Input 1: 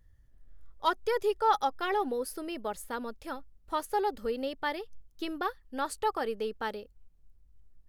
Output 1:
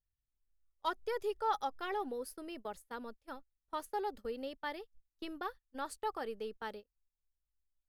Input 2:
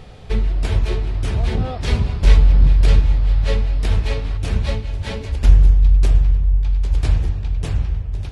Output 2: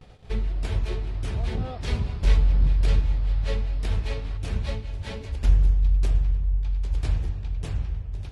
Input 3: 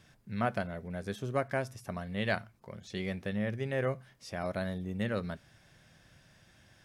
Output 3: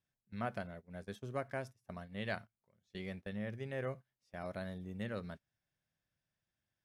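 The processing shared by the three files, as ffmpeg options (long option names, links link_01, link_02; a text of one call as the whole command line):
ffmpeg -i in.wav -af "agate=range=-21dB:threshold=-39dB:ratio=16:detection=peak,volume=-8dB" out.wav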